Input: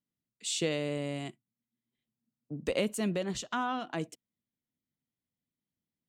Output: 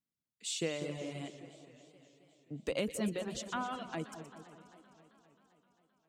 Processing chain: split-band echo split 1700 Hz, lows 0.197 s, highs 0.121 s, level -7.5 dB; reverb removal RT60 0.94 s; warbling echo 0.263 s, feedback 68%, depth 163 cents, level -17 dB; gain -4 dB

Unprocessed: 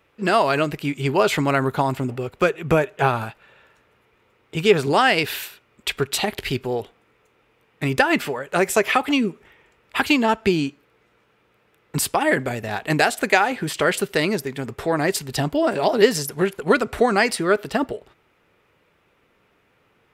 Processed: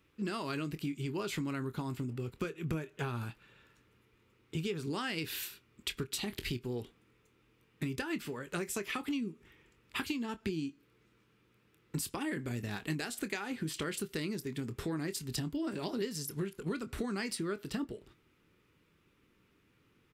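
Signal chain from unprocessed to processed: EQ curve 320 Hz 0 dB, 680 Hz -17 dB, 1100 Hz -8 dB, 1800 Hz -8 dB, 4800 Hz -2 dB; compressor 6:1, threshold -31 dBFS, peak gain reduction 16 dB; doubler 25 ms -12.5 dB; gain -3 dB

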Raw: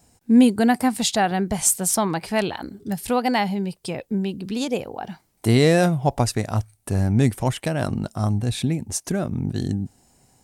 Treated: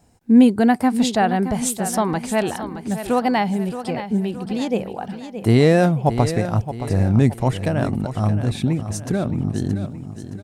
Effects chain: high shelf 3200 Hz -9.5 dB; on a send: feedback echo 0.621 s, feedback 45%, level -11 dB; on the sum: gain +2.5 dB

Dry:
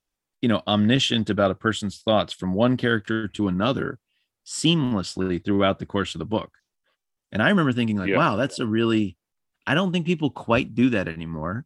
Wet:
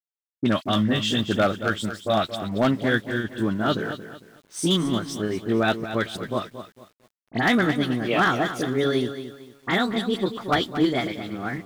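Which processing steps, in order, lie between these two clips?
gliding pitch shift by +4.5 st starting unshifted; dynamic EQ 1300 Hz, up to +4 dB, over -39 dBFS, Q 3.3; crossover distortion -46 dBFS; dispersion highs, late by 44 ms, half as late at 2700 Hz; wavefolder -12 dBFS; lo-fi delay 0.227 s, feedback 35%, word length 8-bit, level -11 dB

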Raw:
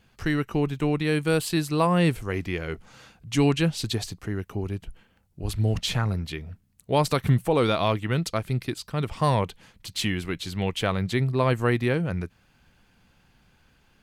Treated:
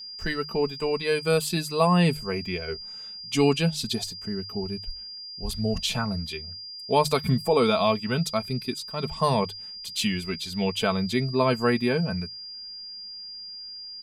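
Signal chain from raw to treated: spectral noise reduction 8 dB; whine 4800 Hz -41 dBFS; notches 50/100/150 Hz; comb 4.6 ms, depth 58%

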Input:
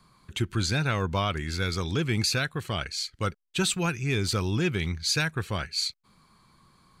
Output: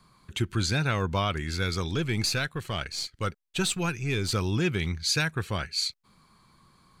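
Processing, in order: 1.88–4.31 half-wave gain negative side -3 dB

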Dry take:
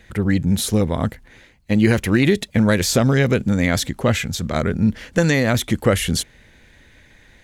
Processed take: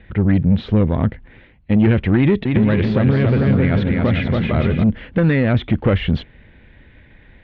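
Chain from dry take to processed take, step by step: tube stage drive 13 dB, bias 0.25; 2.17–4.84 bouncing-ball echo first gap 0.28 s, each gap 0.6×, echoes 5; limiter -11.5 dBFS, peak gain reduction 4.5 dB; steep low-pass 3300 Hz 36 dB/oct; low shelf 400 Hz +7 dB

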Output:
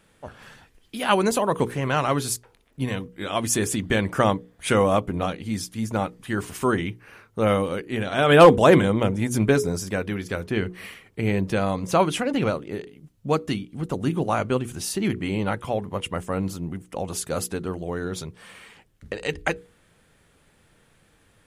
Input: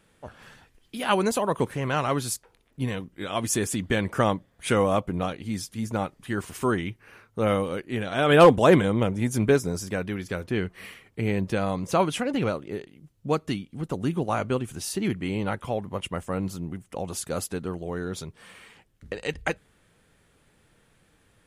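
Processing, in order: notches 60/120/180/240/300/360/420/480 Hz; gain +3 dB

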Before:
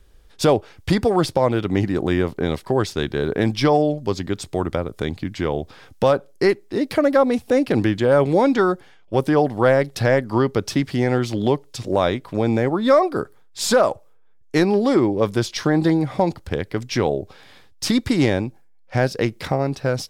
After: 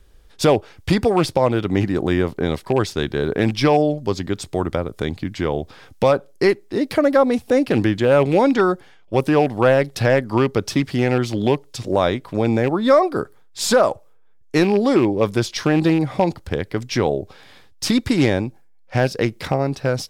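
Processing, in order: rattling part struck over -20 dBFS, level -22 dBFS; gain +1 dB

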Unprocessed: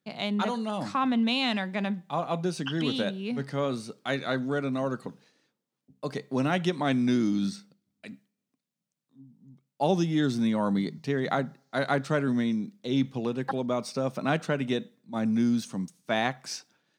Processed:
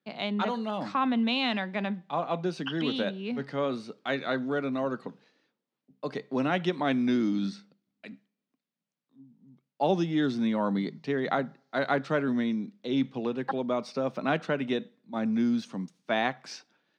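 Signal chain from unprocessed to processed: three-band isolator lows -14 dB, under 160 Hz, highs -18 dB, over 4900 Hz

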